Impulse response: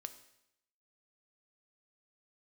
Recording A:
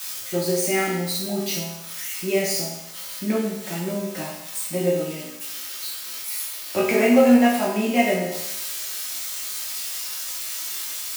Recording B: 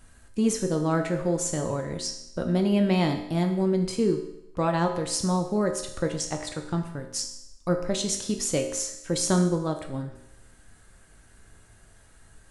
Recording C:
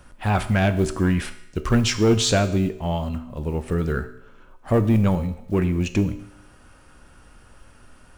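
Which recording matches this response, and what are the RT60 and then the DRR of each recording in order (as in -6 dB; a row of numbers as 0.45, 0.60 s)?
C; 0.80, 0.80, 0.80 s; -6.0, 3.5, 9.0 dB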